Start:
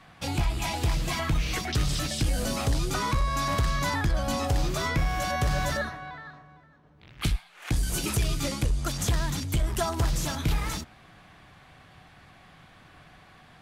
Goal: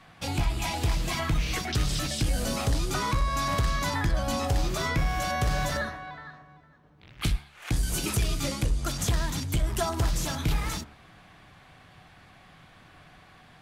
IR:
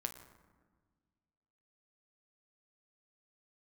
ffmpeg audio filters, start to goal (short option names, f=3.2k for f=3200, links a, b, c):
-af "bandreject=f=71.26:t=h:w=4,bandreject=f=142.52:t=h:w=4,bandreject=f=213.78:t=h:w=4,bandreject=f=285.04:t=h:w=4,bandreject=f=356.3:t=h:w=4,bandreject=f=427.56:t=h:w=4,bandreject=f=498.82:t=h:w=4,bandreject=f=570.08:t=h:w=4,bandreject=f=641.34:t=h:w=4,bandreject=f=712.6:t=h:w=4,bandreject=f=783.86:t=h:w=4,bandreject=f=855.12:t=h:w=4,bandreject=f=926.38:t=h:w=4,bandreject=f=997.64:t=h:w=4,bandreject=f=1.0689k:t=h:w=4,bandreject=f=1.14016k:t=h:w=4,bandreject=f=1.21142k:t=h:w=4,bandreject=f=1.28268k:t=h:w=4,bandreject=f=1.35394k:t=h:w=4,bandreject=f=1.4252k:t=h:w=4,bandreject=f=1.49646k:t=h:w=4,bandreject=f=1.56772k:t=h:w=4,bandreject=f=1.63898k:t=h:w=4,bandreject=f=1.71024k:t=h:w=4,bandreject=f=1.7815k:t=h:w=4,bandreject=f=1.85276k:t=h:w=4,bandreject=f=1.92402k:t=h:w=4,bandreject=f=1.99528k:t=h:w=4"